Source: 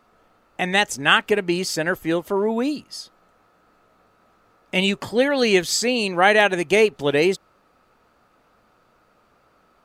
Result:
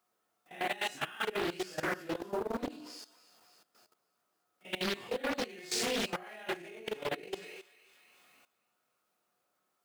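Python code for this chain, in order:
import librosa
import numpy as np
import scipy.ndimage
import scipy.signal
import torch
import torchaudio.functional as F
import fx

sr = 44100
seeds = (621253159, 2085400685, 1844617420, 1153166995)

p1 = fx.phase_scramble(x, sr, seeds[0], window_ms=200)
p2 = fx.comb_fb(p1, sr, f0_hz=360.0, decay_s=0.63, harmonics='all', damping=0.0, mix_pct=80)
p3 = fx.sample_hold(p2, sr, seeds[1], rate_hz=12000.0, jitter_pct=0)
p4 = p2 + (p3 * 10.0 ** (-7.0 / 20.0))
p5 = fx.high_shelf(p4, sr, hz=9700.0, db=3.0)
p6 = fx.quant_dither(p5, sr, seeds[2], bits=12, dither='triangular')
p7 = scipy.signal.sosfilt(scipy.signal.bessel(2, 180.0, 'highpass', norm='mag', fs=sr, output='sos'), p6)
p8 = p7 + fx.echo_thinned(p7, sr, ms=282, feedback_pct=54, hz=1100.0, wet_db=-13, dry=0)
p9 = fx.over_compress(p8, sr, threshold_db=-31.0, ratio=-0.5)
p10 = fx.hum_notches(p9, sr, base_hz=60, count=9)
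p11 = fx.level_steps(p10, sr, step_db=16)
y = fx.doppler_dist(p11, sr, depth_ms=0.63)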